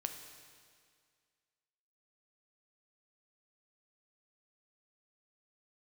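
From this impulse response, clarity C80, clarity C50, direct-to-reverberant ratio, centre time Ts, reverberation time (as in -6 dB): 8.0 dB, 7.0 dB, 5.0 dB, 35 ms, 2.0 s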